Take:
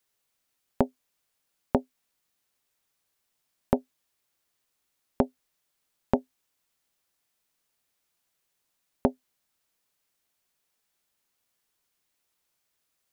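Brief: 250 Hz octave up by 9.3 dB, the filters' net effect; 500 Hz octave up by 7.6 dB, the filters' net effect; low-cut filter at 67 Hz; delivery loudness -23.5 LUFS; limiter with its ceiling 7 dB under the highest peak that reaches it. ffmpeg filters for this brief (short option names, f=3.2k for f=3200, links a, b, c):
-af "highpass=67,equalizer=f=250:t=o:g=8.5,equalizer=f=500:t=o:g=7,volume=5dB,alimiter=limit=-3dB:level=0:latency=1"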